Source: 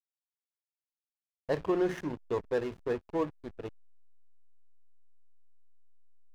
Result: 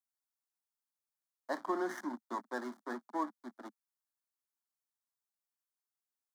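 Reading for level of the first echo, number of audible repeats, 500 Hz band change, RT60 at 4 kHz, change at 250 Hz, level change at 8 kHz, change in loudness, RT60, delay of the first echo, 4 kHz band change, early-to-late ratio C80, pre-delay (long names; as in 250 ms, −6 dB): no echo audible, no echo audible, −10.5 dB, no reverb audible, −6.0 dB, can't be measured, −6.5 dB, no reverb audible, no echo audible, −5.5 dB, no reverb audible, no reverb audible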